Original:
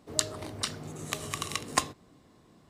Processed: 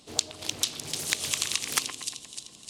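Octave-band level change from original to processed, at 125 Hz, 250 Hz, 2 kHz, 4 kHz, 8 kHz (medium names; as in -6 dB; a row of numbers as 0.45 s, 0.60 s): -6.0 dB, -4.0 dB, +3.5 dB, +6.5 dB, +5.5 dB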